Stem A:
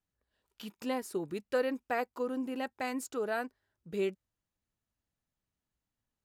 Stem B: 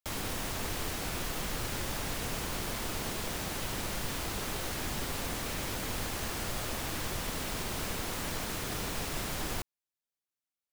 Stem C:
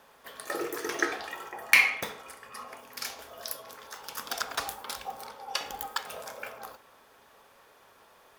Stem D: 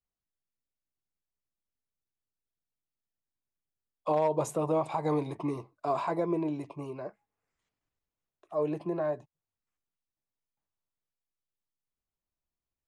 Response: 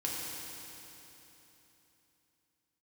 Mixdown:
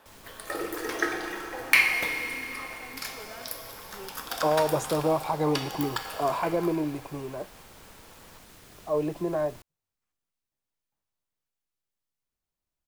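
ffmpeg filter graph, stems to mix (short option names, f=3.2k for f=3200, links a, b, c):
-filter_complex "[0:a]volume=-13dB[a];[1:a]acrusher=bits=5:mix=0:aa=0.5,volume=-16dB[b];[2:a]equalizer=f=6.1k:w=3.4:g=-4.5,volume=-4dB,asplit=2[c][d];[d]volume=-3.5dB[e];[3:a]adelay=350,volume=3dB[f];[4:a]atrim=start_sample=2205[g];[e][g]afir=irnorm=-1:irlink=0[h];[a][b][c][f][h]amix=inputs=5:normalize=0"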